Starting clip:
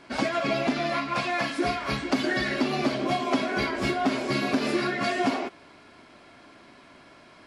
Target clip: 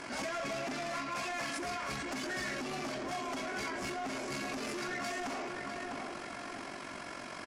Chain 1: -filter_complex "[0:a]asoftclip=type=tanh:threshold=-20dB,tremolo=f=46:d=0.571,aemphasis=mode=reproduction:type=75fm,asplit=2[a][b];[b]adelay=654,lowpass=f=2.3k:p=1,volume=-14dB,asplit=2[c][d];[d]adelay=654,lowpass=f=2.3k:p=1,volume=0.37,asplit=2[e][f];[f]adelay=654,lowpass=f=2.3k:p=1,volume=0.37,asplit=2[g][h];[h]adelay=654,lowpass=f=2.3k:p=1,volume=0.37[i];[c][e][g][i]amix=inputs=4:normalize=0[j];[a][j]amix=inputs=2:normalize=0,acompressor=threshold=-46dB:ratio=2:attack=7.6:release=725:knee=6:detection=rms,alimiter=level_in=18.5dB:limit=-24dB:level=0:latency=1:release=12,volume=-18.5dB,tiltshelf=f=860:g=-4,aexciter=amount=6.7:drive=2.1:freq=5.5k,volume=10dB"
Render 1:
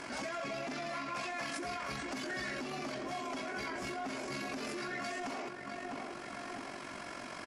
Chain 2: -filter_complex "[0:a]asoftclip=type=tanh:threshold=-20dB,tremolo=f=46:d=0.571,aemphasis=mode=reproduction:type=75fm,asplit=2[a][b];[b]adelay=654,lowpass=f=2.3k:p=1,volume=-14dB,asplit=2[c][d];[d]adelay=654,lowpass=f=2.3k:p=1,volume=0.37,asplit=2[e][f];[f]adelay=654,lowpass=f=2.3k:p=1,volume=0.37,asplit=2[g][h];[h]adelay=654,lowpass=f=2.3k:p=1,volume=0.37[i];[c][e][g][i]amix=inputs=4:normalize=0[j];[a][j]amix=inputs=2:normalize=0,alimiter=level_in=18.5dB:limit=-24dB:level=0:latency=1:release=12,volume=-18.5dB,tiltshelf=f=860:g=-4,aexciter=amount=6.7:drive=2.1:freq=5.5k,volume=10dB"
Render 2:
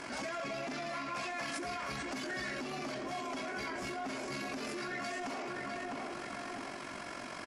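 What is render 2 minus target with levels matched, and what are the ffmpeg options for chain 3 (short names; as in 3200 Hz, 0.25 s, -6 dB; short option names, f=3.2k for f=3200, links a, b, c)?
soft clip: distortion -8 dB
-filter_complex "[0:a]asoftclip=type=tanh:threshold=-28dB,tremolo=f=46:d=0.571,aemphasis=mode=reproduction:type=75fm,asplit=2[a][b];[b]adelay=654,lowpass=f=2.3k:p=1,volume=-14dB,asplit=2[c][d];[d]adelay=654,lowpass=f=2.3k:p=1,volume=0.37,asplit=2[e][f];[f]adelay=654,lowpass=f=2.3k:p=1,volume=0.37,asplit=2[g][h];[h]adelay=654,lowpass=f=2.3k:p=1,volume=0.37[i];[c][e][g][i]amix=inputs=4:normalize=0[j];[a][j]amix=inputs=2:normalize=0,alimiter=level_in=18.5dB:limit=-24dB:level=0:latency=1:release=12,volume=-18.5dB,tiltshelf=f=860:g=-4,aexciter=amount=6.7:drive=2.1:freq=5.5k,volume=10dB"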